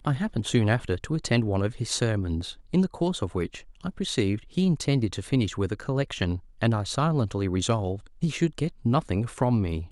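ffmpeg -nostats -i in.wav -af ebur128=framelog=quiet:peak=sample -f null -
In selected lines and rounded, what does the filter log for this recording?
Integrated loudness:
  I:         -26.8 LUFS
  Threshold: -36.9 LUFS
Loudness range:
  LRA:         1.2 LU
  Threshold: -47.1 LUFS
  LRA low:   -27.7 LUFS
  LRA high:  -26.5 LUFS
Sample peak:
  Peak:       -8.2 dBFS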